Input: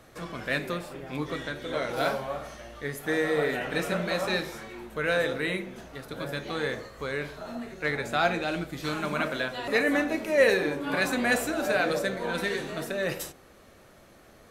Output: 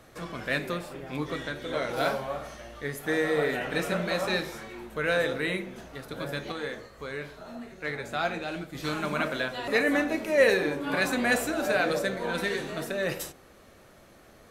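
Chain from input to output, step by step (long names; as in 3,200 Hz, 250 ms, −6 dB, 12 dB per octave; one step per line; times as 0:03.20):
0:06.52–0:08.75: flanger 1.4 Hz, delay 8.5 ms, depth 5.6 ms, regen −72%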